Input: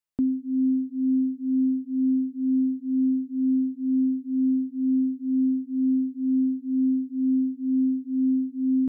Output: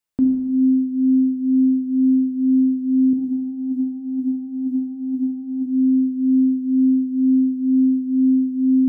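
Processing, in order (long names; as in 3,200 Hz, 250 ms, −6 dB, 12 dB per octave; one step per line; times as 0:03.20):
0:03.13–0:05.66: compressor whose output falls as the input rises −32 dBFS, ratio −1
reverb whose tail is shaped and stops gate 460 ms falling, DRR 2.5 dB
level +4.5 dB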